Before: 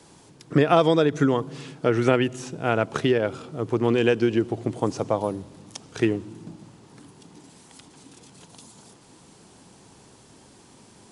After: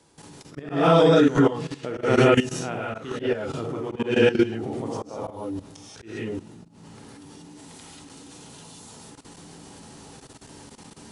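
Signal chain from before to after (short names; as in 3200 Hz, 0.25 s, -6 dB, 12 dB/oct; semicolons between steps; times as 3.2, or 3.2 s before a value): non-linear reverb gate 0.21 s rising, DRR -7 dB; level quantiser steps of 15 dB; auto swell 0.211 s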